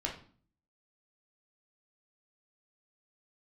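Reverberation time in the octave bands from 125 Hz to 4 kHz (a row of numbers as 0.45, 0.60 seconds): 0.70, 0.65, 0.45, 0.45, 0.40, 0.40 seconds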